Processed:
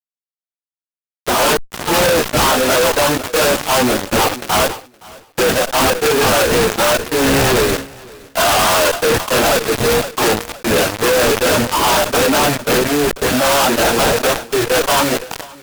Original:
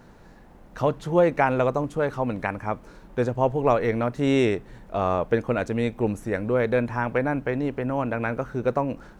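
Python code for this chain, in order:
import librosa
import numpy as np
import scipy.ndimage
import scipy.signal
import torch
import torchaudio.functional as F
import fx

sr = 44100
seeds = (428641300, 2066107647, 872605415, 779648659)

p1 = fx.octave_divider(x, sr, octaves=1, level_db=2.0)
p2 = scipy.signal.sosfilt(scipy.signal.butter(4, 6800.0, 'lowpass', fs=sr, output='sos'), p1)
p3 = fx.notch(p2, sr, hz=3400.0, q=7.5)
p4 = fx.dereverb_blind(p3, sr, rt60_s=1.4)
p5 = scipy.signal.sosfilt(scipy.signal.butter(2, 610.0, 'highpass', fs=sr, output='sos'), p4)
p6 = fx.level_steps(p5, sr, step_db=11)
p7 = fx.sample_hold(p6, sr, seeds[0], rate_hz=2100.0, jitter_pct=20)
p8 = 10.0 ** (-24.0 / 20.0) * (np.abs((p7 / 10.0 ** (-24.0 / 20.0) + 3.0) % 4.0 - 2.0) - 1.0)
p9 = fx.stretch_vocoder_free(p8, sr, factor=1.7)
p10 = fx.fuzz(p9, sr, gain_db=61.0, gate_db=-53.0)
p11 = p10 + fx.echo_feedback(p10, sr, ms=518, feedback_pct=21, wet_db=-23.0, dry=0)
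p12 = fx.sustainer(p11, sr, db_per_s=140.0)
y = p12 * 10.0 ** (1.5 / 20.0)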